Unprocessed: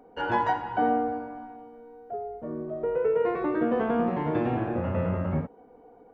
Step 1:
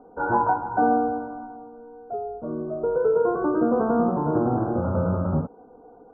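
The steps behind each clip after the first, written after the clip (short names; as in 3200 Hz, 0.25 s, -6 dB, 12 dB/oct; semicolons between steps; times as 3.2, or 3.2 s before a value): Chebyshev low-pass 1500 Hz, order 8; gain +4.5 dB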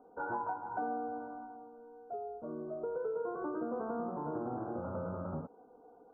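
low shelf 180 Hz -10 dB; compressor 2.5:1, threshold -28 dBFS, peak gain reduction 7.5 dB; gain -8.5 dB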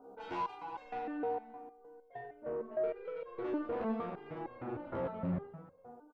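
soft clip -37 dBFS, distortion -12 dB; on a send: reverse bouncing-ball echo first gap 40 ms, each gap 1.5×, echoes 5; on the sum: stepped resonator 6.5 Hz 67–540 Hz; gain +11.5 dB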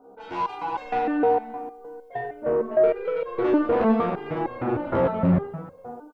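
AGC gain up to 12 dB; gain +3.5 dB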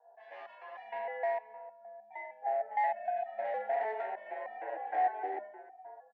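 overloaded stage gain 17 dB; frequency shift +210 Hz; double band-pass 1200 Hz, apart 1.3 oct; gain -3.5 dB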